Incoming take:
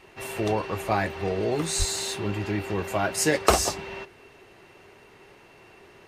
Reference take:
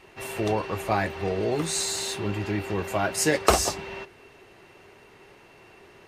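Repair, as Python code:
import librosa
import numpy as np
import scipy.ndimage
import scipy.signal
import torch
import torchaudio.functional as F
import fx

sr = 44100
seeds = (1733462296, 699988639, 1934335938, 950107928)

y = fx.fix_deplosive(x, sr, at_s=(1.78,))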